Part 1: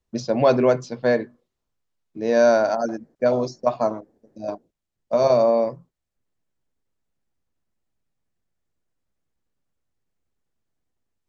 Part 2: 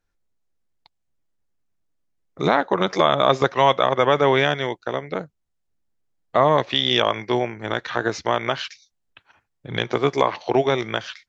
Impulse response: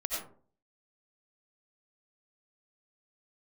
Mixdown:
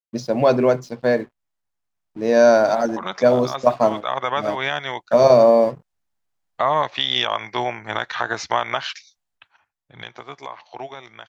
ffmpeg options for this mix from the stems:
-filter_complex "[0:a]aeval=exprs='sgn(val(0))*max(abs(val(0))-0.00376,0)':channel_layout=same,volume=1dB,asplit=2[link_01][link_02];[1:a]lowshelf=frequency=590:width_type=q:width=1.5:gain=-7,alimiter=limit=-11dB:level=0:latency=1:release=402,adelay=250,volume=-1.5dB,afade=type=out:start_time=9.03:duration=0.59:silence=0.375837[link_03];[link_02]apad=whole_len=508580[link_04];[link_03][link_04]sidechaincompress=threshold=-32dB:ratio=4:attack=11:release=199[link_05];[link_01][link_05]amix=inputs=2:normalize=0,dynaudnorm=framelen=280:gausssize=17:maxgain=8dB"

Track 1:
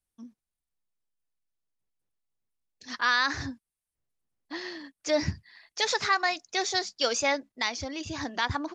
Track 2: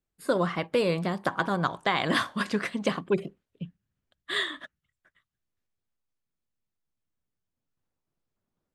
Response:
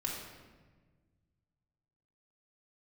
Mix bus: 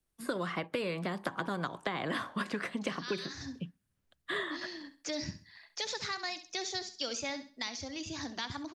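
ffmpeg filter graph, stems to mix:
-filter_complex "[0:a]acrossover=split=270|3000[link_01][link_02][link_03];[link_02]acompressor=threshold=-47dB:ratio=2[link_04];[link_01][link_04][link_03]amix=inputs=3:normalize=0,volume=-1.5dB,asplit=2[link_05][link_06];[link_06]volume=-13dB[link_07];[1:a]acrossover=split=520|1200|2500[link_08][link_09][link_10][link_11];[link_08]acompressor=threshold=-27dB:ratio=4[link_12];[link_09]acompressor=threshold=-36dB:ratio=4[link_13];[link_10]acompressor=threshold=-37dB:ratio=4[link_14];[link_11]acompressor=threshold=-50dB:ratio=4[link_15];[link_12][link_13][link_14][link_15]amix=inputs=4:normalize=0,volume=1.5dB,asplit=2[link_16][link_17];[link_17]apad=whole_len=385475[link_18];[link_05][link_18]sidechaincompress=threshold=-34dB:ratio=8:attack=11:release=371[link_19];[link_07]aecho=0:1:66|132|198|264:1|0.28|0.0784|0.022[link_20];[link_19][link_16][link_20]amix=inputs=3:normalize=0,acrossover=split=180|1600|3600[link_21][link_22][link_23][link_24];[link_21]acompressor=threshold=-50dB:ratio=4[link_25];[link_22]acompressor=threshold=-34dB:ratio=4[link_26];[link_23]acompressor=threshold=-40dB:ratio=4[link_27];[link_24]acompressor=threshold=-41dB:ratio=4[link_28];[link_25][link_26][link_27][link_28]amix=inputs=4:normalize=0"

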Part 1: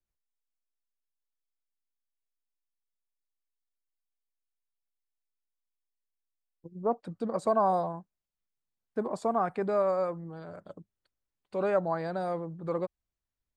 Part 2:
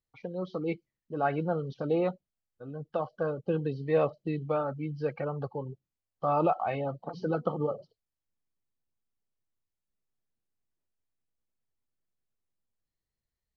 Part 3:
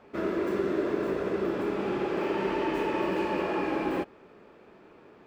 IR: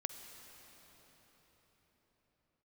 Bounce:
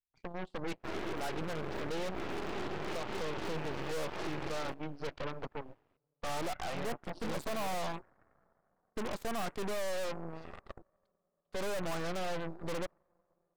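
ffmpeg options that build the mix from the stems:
-filter_complex "[0:a]volume=-5dB,asplit=2[link_01][link_02];[link_02]volume=-18.5dB[link_03];[1:a]asoftclip=type=tanh:threshold=-21dB,volume=-9dB,asplit=3[link_04][link_05][link_06];[link_05]volume=-19.5dB[link_07];[2:a]adelay=700,volume=-11dB[link_08];[link_06]apad=whole_len=263177[link_09];[link_08][link_09]sidechaincompress=threshold=-48dB:ratio=4:attack=8.9:release=131[link_10];[3:a]atrim=start_sample=2205[link_11];[link_03][link_07]amix=inputs=2:normalize=0[link_12];[link_12][link_11]afir=irnorm=-1:irlink=0[link_13];[link_01][link_04][link_10][link_13]amix=inputs=4:normalize=0,volume=34dB,asoftclip=hard,volume=-34dB,aeval=exprs='0.0211*(cos(1*acos(clip(val(0)/0.0211,-1,1)))-cos(1*PI/2))+0.00668*(cos(2*acos(clip(val(0)/0.0211,-1,1)))-cos(2*PI/2))+0.00841*(cos(6*acos(clip(val(0)/0.0211,-1,1)))-cos(6*PI/2))+0.00376*(cos(7*acos(clip(val(0)/0.0211,-1,1)))-cos(7*PI/2))+0.00211*(cos(8*acos(clip(val(0)/0.0211,-1,1)))-cos(8*PI/2))':channel_layout=same"

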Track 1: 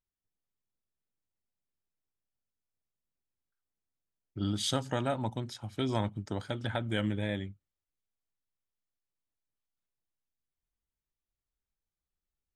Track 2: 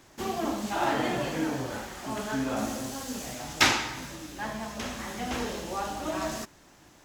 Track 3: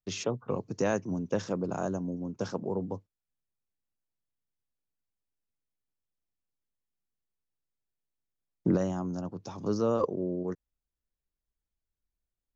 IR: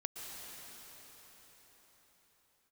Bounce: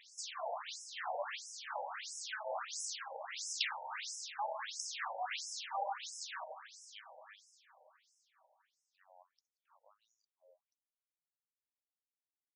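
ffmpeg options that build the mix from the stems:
-filter_complex "[0:a]volume=-17dB,asplit=2[link_01][link_02];[link_02]volume=-5dB[link_03];[1:a]lowshelf=frequency=470:gain=-5,acompressor=threshold=-34dB:ratio=8,volume=2.5dB,asplit=2[link_04][link_05];[link_05]volume=-7dB[link_06];[2:a]adelay=200,volume=-19dB[link_07];[3:a]atrim=start_sample=2205[link_08];[link_03][link_06]amix=inputs=2:normalize=0[link_09];[link_09][link_08]afir=irnorm=-1:irlink=0[link_10];[link_01][link_04][link_07][link_10]amix=inputs=4:normalize=0,lowshelf=frequency=400:gain=-7,afftfilt=real='re*between(b*sr/1024,660*pow(7300/660,0.5+0.5*sin(2*PI*1.5*pts/sr))/1.41,660*pow(7300/660,0.5+0.5*sin(2*PI*1.5*pts/sr))*1.41)':imag='im*between(b*sr/1024,660*pow(7300/660,0.5+0.5*sin(2*PI*1.5*pts/sr))/1.41,660*pow(7300/660,0.5+0.5*sin(2*PI*1.5*pts/sr))*1.41)':win_size=1024:overlap=0.75"

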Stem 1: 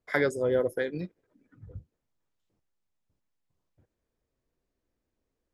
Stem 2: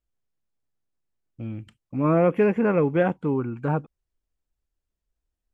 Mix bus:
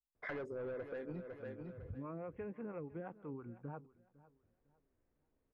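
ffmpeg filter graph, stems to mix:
ffmpeg -i stem1.wav -i stem2.wav -filter_complex "[0:a]asoftclip=type=tanh:threshold=-27.5dB,adelay=150,volume=0dB,asplit=2[link_01][link_02];[link_02]volume=-12.5dB[link_03];[1:a]acrossover=split=420[link_04][link_05];[link_04]aeval=exprs='val(0)*(1-0.7/2+0.7/2*cos(2*PI*6*n/s))':channel_layout=same[link_06];[link_05]aeval=exprs='val(0)*(1-0.7/2-0.7/2*cos(2*PI*6*n/s))':channel_layout=same[link_07];[link_06][link_07]amix=inputs=2:normalize=0,volume=-16.5dB,asplit=3[link_08][link_09][link_10];[link_09]volume=-22dB[link_11];[link_10]apad=whole_len=250764[link_12];[link_01][link_12]sidechaincompress=threshold=-58dB:ratio=8:attack=16:release=531[link_13];[link_03][link_11]amix=inputs=2:normalize=0,aecho=0:1:504|1008|1512|2016:1|0.27|0.0729|0.0197[link_14];[link_13][link_08][link_14]amix=inputs=3:normalize=0,lowpass=2000,acompressor=threshold=-41dB:ratio=10" out.wav

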